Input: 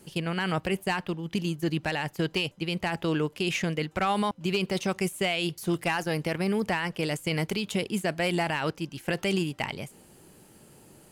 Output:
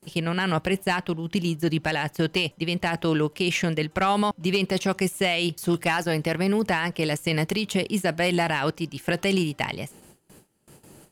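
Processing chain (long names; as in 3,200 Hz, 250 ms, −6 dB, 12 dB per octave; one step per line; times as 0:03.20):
noise gate with hold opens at −43 dBFS
level +4 dB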